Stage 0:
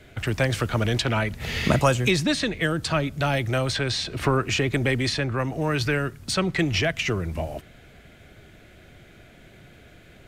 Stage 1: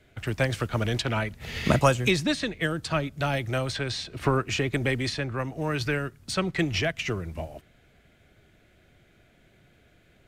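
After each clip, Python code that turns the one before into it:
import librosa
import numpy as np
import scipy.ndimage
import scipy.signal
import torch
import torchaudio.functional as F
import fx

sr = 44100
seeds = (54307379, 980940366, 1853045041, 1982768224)

y = fx.upward_expand(x, sr, threshold_db=-36.0, expansion=1.5)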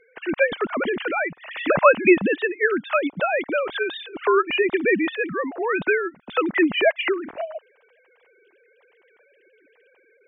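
y = fx.sine_speech(x, sr)
y = y * 10.0 ** (5.5 / 20.0)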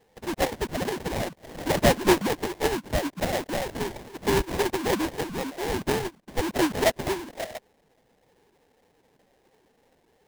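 y = fx.sample_hold(x, sr, seeds[0], rate_hz=1300.0, jitter_pct=20)
y = y * 10.0 ** (-5.0 / 20.0)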